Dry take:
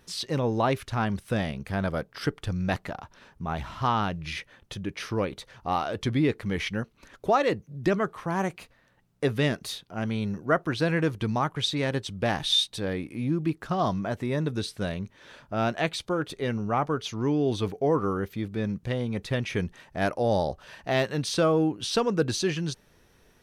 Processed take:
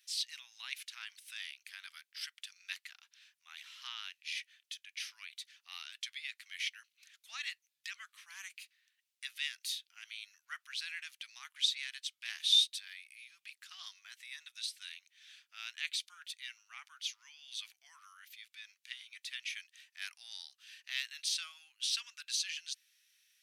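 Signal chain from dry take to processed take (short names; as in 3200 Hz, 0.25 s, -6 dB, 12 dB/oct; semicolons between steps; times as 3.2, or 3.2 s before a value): inverse Chebyshev high-pass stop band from 510 Hz, stop band 70 dB; gain -2.5 dB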